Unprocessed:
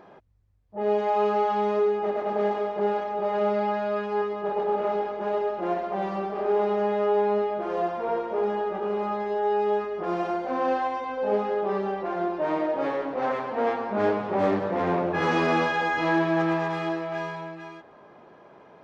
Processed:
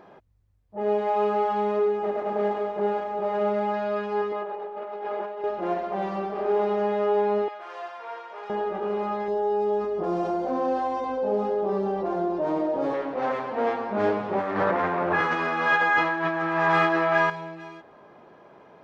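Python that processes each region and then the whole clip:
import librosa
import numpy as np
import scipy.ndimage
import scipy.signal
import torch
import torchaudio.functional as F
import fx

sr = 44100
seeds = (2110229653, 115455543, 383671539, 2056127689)

y = fx.chain(x, sr, fx.median_filter(points=9),
    fx.air_absorb(metres=100.0), at=(0.8, 3.74))
y = fx.chain(y, sr, fx.bass_treble(bass_db=-14, treble_db=-8),
    fx.over_compress(threshold_db=-33.0, ratio=-1.0), at=(4.32, 5.44))
y = fx.chain(y, sr, fx.highpass(hz=1200.0, slope=12),
    fx.resample_bad(factor=2, down='none', up='filtered'), at=(7.48, 8.5))
y = fx.chain(y, sr, fx.peak_eq(hz=2100.0, db=-12.0, octaves=1.9),
    fx.env_flatten(amount_pct=50), at=(9.28, 12.94))
y = fx.chain(y, sr, fx.over_compress(threshold_db=-29.0, ratio=-1.0),
    fx.peak_eq(hz=1400.0, db=11.0, octaves=1.7), at=(14.39, 17.3))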